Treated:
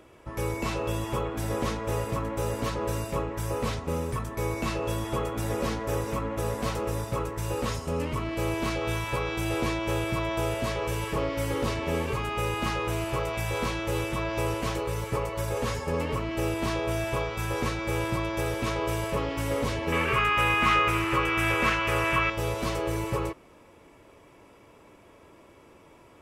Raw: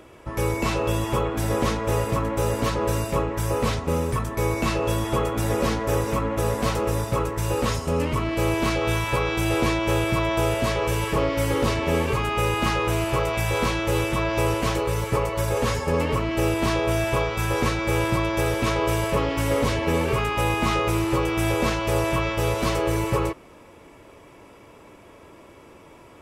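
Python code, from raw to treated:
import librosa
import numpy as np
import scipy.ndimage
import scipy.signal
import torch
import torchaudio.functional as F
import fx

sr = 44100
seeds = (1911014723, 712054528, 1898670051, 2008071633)

y = fx.band_shelf(x, sr, hz=1800.0, db=10.5, octaves=1.7, at=(19.92, 22.3))
y = y * librosa.db_to_amplitude(-6.0)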